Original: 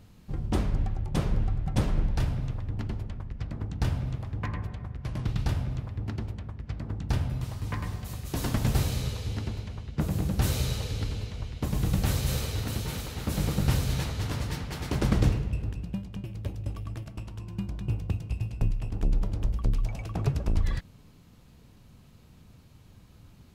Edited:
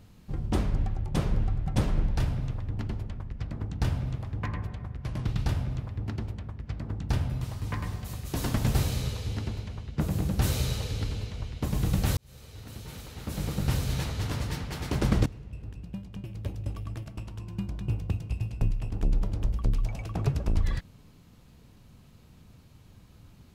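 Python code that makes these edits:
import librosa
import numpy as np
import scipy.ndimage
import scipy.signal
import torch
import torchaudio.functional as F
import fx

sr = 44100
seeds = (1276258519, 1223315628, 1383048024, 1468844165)

y = fx.edit(x, sr, fx.fade_in_span(start_s=12.17, length_s=2.0),
    fx.fade_in_from(start_s=15.26, length_s=1.24, floor_db=-20.5), tone=tone)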